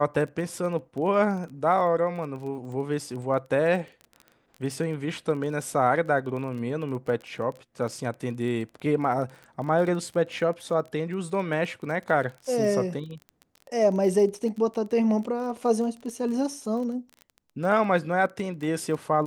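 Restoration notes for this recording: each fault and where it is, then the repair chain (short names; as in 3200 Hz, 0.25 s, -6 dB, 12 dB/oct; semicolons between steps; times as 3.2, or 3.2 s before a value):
crackle 21/s -34 dBFS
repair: de-click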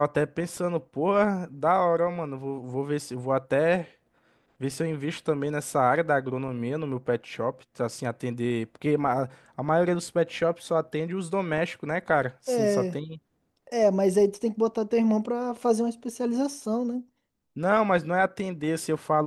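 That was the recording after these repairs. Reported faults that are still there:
none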